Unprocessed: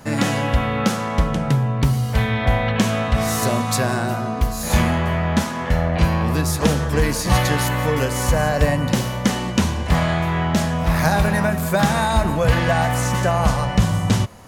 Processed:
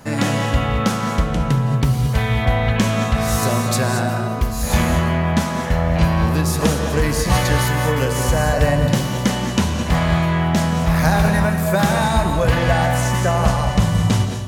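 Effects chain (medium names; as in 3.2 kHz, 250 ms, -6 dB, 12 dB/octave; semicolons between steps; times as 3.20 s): gated-style reverb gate 250 ms rising, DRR 6.5 dB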